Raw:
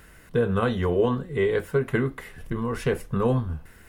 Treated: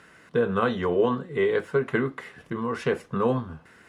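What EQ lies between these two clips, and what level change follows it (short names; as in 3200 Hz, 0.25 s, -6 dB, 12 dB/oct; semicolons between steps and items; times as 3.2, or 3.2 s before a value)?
BPF 170–6600 Hz; bell 1200 Hz +3 dB; 0.0 dB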